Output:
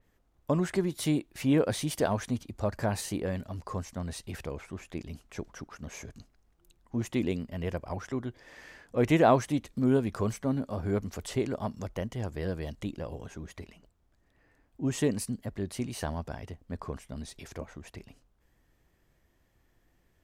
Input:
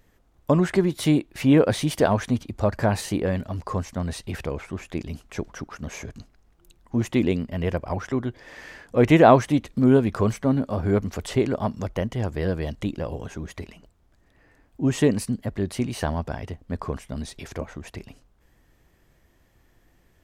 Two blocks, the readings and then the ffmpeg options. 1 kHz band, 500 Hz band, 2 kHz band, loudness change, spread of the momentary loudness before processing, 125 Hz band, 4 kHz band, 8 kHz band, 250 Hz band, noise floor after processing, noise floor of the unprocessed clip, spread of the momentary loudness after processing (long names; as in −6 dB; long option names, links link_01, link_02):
−8.0 dB, −8.0 dB, −8.0 dB, −8.0 dB, 17 LU, −8.0 dB, −6.5 dB, −3.0 dB, −8.0 dB, −70 dBFS, −62 dBFS, 17 LU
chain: -af "adynamicequalizer=threshold=0.00631:dfrequency=4600:dqfactor=0.7:tfrequency=4600:tqfactor=0.7:attack=5:release=100:ratio=0.375:range=3:mode=boostabove:tftype=highshelf,volume=-8dB"